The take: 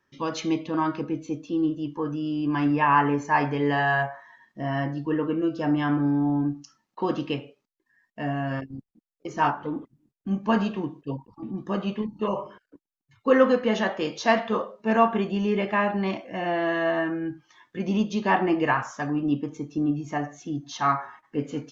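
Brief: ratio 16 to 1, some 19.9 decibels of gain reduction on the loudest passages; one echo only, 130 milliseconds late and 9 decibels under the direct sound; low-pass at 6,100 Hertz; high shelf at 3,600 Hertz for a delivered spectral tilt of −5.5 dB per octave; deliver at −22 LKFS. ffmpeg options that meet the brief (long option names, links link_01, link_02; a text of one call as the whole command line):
ffmpeg -i in.wav -af "lowpass=6100,highshelf=frequency=3600:gain=-5,acompressor=threshold=-33dB:ratio=16,aecho=1:1:130:0.355,volume=16dB" out.wav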